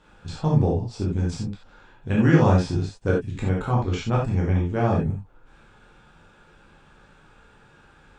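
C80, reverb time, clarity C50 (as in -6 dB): 9.5 dB, no single decay rate, 3.5 dB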